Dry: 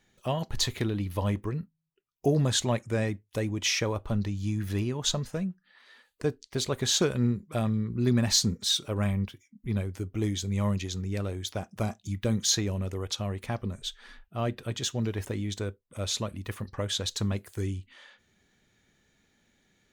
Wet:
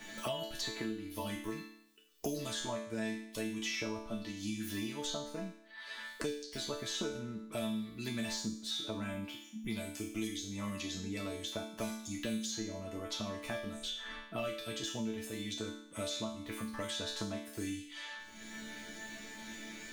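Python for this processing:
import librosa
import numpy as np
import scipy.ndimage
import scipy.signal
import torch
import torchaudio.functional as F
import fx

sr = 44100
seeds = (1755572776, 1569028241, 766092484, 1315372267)

y = fx.resonator_bank(x, sr, root=57, chord='sus4', decay_s=0.51)
y = fx.band_squash(y, sr, depth_pct=100)
y = y * librosa.db_to_amplitude(11.5)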